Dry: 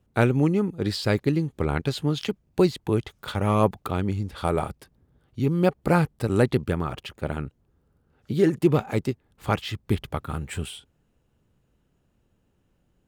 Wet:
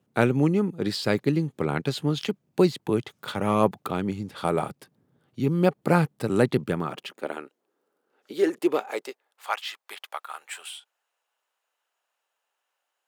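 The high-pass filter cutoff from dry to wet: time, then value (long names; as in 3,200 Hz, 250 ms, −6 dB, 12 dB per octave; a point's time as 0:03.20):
high-pass filter 24 dB per octave
0:06.73 130 Hz
0:07.41 340 Hz
0:08.75 340 Hz
0:09.53 740 Hz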